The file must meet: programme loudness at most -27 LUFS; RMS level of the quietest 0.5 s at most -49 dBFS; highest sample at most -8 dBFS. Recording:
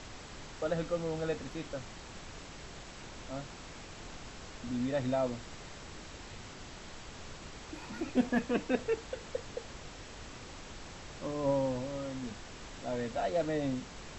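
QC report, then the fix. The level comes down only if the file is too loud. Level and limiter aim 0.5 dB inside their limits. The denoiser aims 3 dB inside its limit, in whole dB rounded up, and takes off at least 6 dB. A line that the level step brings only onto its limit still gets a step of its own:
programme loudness -38.0 LUFS: OK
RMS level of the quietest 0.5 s -47 dBFS: fail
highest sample -16.5 dBFS: OK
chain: denoiser 6 dB, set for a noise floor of -47 dBFS

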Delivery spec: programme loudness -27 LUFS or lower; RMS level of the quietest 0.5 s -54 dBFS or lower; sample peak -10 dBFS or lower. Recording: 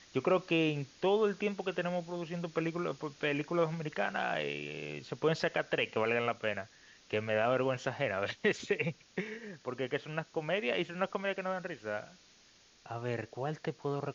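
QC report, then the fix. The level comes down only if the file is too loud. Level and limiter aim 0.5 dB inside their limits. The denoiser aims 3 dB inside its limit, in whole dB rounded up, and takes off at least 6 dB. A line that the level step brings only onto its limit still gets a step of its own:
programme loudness -34.5 LUFS: OK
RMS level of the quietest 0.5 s -63 dBFS: OK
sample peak -15.5 dBFS: OK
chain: none

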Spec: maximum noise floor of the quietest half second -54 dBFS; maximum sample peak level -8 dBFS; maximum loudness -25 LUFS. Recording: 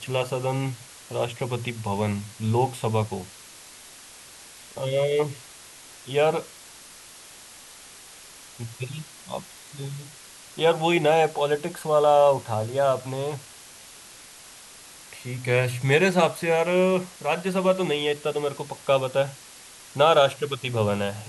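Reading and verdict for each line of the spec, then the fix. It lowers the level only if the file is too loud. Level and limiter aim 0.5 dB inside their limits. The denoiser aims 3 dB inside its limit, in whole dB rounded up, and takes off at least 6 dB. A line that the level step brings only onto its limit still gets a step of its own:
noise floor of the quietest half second -46 dBFS: fail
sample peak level -6.0 dBFS: fail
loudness -24.0 LUFS: fail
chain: denoiser 10 dB, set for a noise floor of -46 dBFS; gain -1.5 dB; limiter -8.5 dBFS

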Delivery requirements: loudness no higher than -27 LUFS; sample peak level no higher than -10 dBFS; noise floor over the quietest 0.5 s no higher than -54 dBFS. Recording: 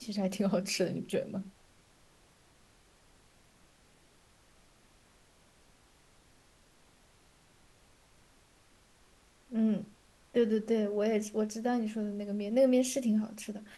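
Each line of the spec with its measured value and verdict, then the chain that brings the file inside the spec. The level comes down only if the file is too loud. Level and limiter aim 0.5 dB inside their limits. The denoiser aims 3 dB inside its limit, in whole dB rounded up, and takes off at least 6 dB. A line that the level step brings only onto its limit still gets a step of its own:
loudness -32.0 LUFS: OK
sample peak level -16.5 dBFS: OK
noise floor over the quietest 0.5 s -64 dBFS: OK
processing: none

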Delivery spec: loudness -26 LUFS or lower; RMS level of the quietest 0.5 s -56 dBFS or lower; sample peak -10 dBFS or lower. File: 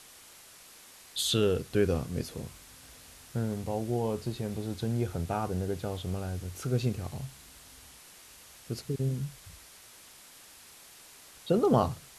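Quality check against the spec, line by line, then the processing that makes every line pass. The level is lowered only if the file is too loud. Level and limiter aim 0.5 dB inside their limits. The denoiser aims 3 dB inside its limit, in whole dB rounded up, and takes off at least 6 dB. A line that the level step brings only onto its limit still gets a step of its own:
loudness -31.5 LUFS: OK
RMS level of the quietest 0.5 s -53 dBFS: fail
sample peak -11.5 dBFS: OK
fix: denoiser 6 dB, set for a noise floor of -53 dBFS

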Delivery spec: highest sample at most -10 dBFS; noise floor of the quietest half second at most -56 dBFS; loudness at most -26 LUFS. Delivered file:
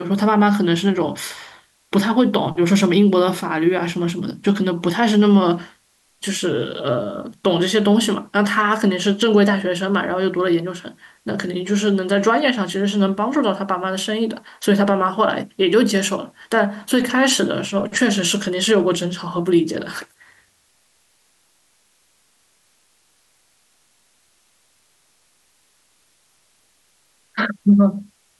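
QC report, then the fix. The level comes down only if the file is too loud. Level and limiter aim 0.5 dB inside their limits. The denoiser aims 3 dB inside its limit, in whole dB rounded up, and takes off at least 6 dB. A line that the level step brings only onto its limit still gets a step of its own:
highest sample -5.5 dBFS: fail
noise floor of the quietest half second -61 dBFS: OK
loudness -18.5 LUFS: fail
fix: gain -8 dB

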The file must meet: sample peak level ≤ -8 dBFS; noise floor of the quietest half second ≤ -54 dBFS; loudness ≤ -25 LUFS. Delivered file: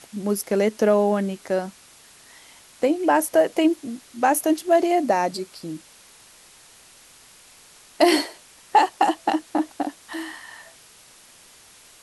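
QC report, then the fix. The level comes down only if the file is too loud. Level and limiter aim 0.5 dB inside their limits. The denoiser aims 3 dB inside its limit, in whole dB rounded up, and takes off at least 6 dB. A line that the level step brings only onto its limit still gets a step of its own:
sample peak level -5.0 dBFS: fail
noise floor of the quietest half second -50 dBFS: fail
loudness -22.0 LUFS: fail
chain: denoiser 6 dB, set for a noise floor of -50 dBFS; gain -3.5 dB

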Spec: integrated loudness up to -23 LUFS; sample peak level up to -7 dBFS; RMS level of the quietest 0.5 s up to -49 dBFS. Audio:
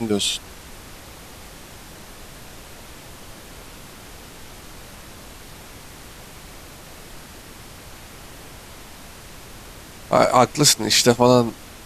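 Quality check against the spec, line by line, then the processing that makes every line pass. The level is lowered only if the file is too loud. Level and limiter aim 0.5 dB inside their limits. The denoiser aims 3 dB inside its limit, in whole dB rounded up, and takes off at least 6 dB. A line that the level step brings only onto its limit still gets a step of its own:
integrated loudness -17.0 LUFS: fail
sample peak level -2.0 dBFS: fail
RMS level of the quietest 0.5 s -41 dBFS: fail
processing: denoiser 6 dB, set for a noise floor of -41 dBFS; gain -6.5 dB

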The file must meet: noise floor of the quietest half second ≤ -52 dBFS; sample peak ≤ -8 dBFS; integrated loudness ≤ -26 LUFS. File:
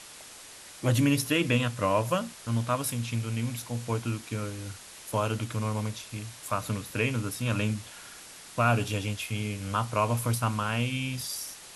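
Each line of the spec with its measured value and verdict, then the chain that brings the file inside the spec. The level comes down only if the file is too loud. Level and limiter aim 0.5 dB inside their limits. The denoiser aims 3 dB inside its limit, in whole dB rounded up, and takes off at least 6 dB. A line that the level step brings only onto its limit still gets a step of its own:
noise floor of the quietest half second -47 dBFS: fail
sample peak -10.5 dBFS: OK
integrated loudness -29.5 LUFS: OK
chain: denoiser 8 dB, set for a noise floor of -47 dBFS

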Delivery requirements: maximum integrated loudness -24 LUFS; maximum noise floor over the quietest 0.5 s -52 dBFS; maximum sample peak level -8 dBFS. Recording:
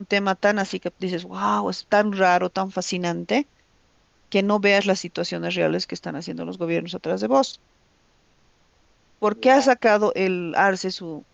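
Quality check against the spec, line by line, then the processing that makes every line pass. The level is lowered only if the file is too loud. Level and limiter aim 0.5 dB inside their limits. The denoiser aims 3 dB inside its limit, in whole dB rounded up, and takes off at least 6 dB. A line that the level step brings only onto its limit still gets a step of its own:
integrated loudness -22.0 LUFS: fail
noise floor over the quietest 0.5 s -61 dBFS: OK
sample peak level -5.5 dBFS: fail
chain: gain -2.5 dB; limiter -8.5 dBFS

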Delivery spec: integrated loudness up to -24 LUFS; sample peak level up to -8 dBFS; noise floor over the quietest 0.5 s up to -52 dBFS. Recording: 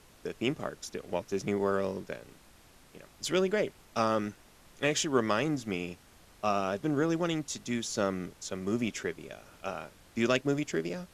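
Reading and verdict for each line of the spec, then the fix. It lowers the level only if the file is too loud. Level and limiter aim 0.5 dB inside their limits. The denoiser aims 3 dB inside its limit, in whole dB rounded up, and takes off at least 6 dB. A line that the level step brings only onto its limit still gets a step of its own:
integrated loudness -32.0 LUFS: OK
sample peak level -12.5 dBFS: OK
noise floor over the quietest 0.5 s -58 dBFS: OK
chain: none

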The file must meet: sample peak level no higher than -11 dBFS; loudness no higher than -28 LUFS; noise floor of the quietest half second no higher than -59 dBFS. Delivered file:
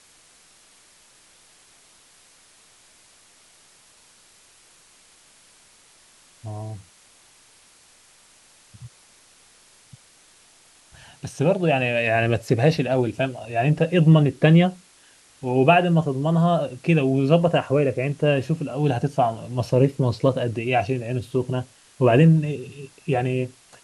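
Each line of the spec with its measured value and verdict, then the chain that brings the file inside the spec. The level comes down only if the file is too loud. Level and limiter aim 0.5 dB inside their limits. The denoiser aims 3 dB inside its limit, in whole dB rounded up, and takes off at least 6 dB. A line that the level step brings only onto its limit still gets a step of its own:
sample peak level -4.0 dBFS: fail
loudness -21.0 LUFS: fail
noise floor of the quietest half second -54 dBFS: fail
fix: gain -7.5 dB

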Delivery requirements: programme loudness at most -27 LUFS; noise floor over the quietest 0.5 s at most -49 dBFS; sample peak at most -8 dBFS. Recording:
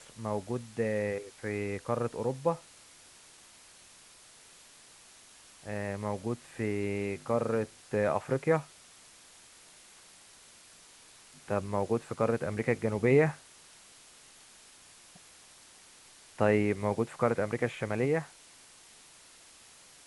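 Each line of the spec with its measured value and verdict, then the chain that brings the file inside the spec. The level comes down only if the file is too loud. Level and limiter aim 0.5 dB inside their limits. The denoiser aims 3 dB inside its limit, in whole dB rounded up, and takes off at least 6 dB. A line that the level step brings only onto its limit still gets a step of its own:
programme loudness -31.5 LUFS: OK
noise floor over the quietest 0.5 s -56 dBFS: OK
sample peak -11.0 dBFS: OK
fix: none

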